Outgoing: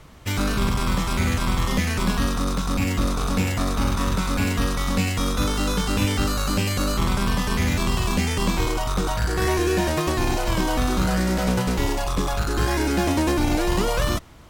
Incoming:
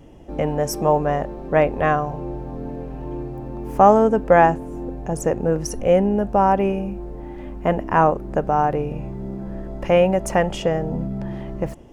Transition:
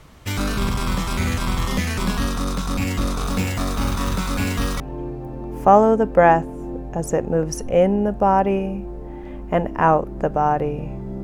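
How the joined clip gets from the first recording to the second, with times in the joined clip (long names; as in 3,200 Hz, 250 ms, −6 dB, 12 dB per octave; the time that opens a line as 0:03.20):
outgoing
0:03.25–0:04.80: one scale factor per block 5 bits
0:04.80: continue with incoming from 0:02.93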